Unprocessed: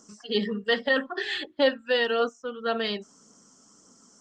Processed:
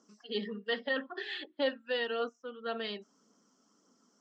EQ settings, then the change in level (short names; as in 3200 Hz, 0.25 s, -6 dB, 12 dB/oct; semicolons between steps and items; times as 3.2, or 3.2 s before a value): Chebyshev band-pass 230–4000 Hz, order 2; -8.5 dB